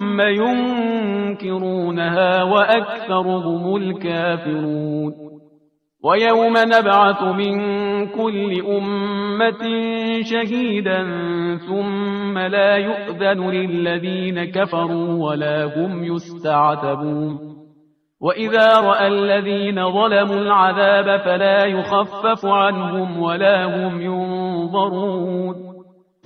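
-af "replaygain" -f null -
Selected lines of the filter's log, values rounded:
track_gain = -2.2 dB
track_peak = 0.580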